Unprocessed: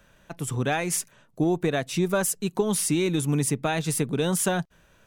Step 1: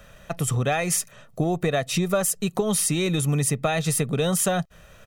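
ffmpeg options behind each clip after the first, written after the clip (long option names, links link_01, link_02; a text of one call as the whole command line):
ffmpeg -i in.wav -af "aecho=1:1:1.6:0.5,acompressor=threshold=-31dB:ratio=2.5,volume=8dB" out.wav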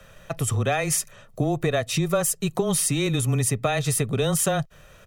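ffmpeg -i in.wav -af "afreqshift=-15" out.wav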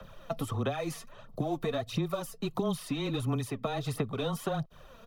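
ffmpeg -i in.wav -filter_complex "[0:a]equalizer=frequency=250:width_type=o:width=1:gain=6,equalizer=frequency=1000:width_type=o:width=1:gain=8,equalizer=frequency=2000:width_type=o:width=1:gain=-7,equalizer=frequency=4000:width_type=o:width=1:gain=5,equalizer=frequency=8000:width_type=o:width=1:gain=-11,aphaser=in_gain=1:out_gain=1:delay=4.5:decay=0.59:speed=1.5:type=sinusoidal,acrossover=split=240|770|3100[link_01][link_02][link_03][link_04];[link_01]acompressor=threshold=-29dB:ratio=4[link_05];[link_02]acompressor=threshold=-29dB:ratio=4[link_06];[link_03]acompressor=threshold=-34dB:ratio=4[link_07];[link_04]acompressor=threshold=-41dB:ratio=4[link_08];[link_05][link_06][link_07][link_08]amix=inputs=4:normalize=0,volume=-6dB" out.wav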